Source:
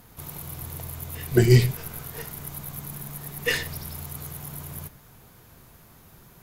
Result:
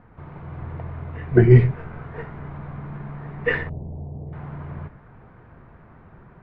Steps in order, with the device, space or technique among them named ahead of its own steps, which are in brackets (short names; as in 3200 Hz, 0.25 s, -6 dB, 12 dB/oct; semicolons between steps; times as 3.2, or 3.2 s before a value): 3.69–4.33 inverse Chebyshev band-stop 1300–9900 Hz, stop band 40 dB; action camera in a waterproof case (LPF 1900 Hz 24 dB/oct; AGC gain up to 3.5 dB; gain +2 dB; AAC 64 kbps 16000 Hz)